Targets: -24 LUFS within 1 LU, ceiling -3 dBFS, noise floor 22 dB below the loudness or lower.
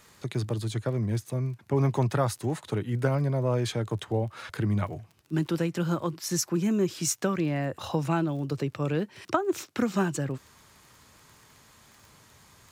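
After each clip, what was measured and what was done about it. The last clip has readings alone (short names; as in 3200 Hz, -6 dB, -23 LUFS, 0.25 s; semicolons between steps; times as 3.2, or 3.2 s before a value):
ticks 26/s; loudness -29.0 LUFS; peak -11.5 dBFS; loudness target -24.0 LUFS
-> de-click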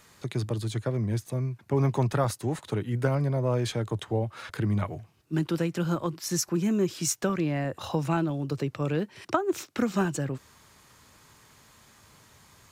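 ticks 0.079/s; loudness -29.0 LUFS; peak -11.5 dBFS; loudness target -24.0 LUFS
-> gain +5 dB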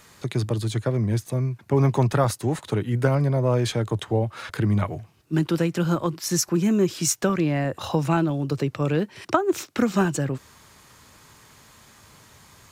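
loudness -24.0 LUFS; peak -6.5 dBFS; noise floor -53 dBFS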